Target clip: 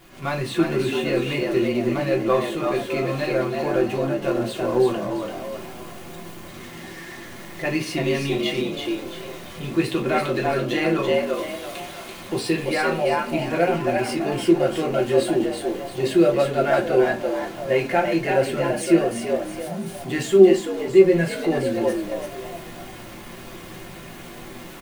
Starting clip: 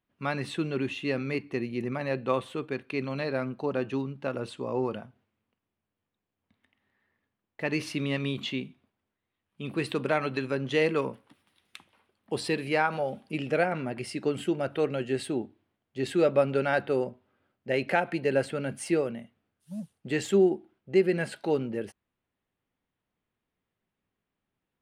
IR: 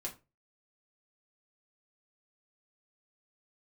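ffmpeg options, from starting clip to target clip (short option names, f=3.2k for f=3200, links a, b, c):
-filter_complex "[0:a]aeval=exprs='val(0)+0.5*0.0119*sgn(val(0))':c=same,dynaudnorm=f=100:g=3:m=10dB,asplit=6[a][b][c][d][e][f];[b]adelay=337,afreqshift=80,volume=-4dB[g];[c]adelay=674,afreqshift=160,volume=-12.2dB[h];[d]adelay=1011,afreqshift=240,volume=-20.4dB[i];[e]adelay=1348,afreqshift=320,volume=-28.5dB[j];[f]adelay=1685,afreqshift=400,volume=-36.7dB[k];[a][g][h][i][j][k]amix=inputs=6:normalize=0[l];[1:a]atrim=start_sample=2205[m];[l][m]afir=irnorm=-1:irlink=0,volume=-4.5dB"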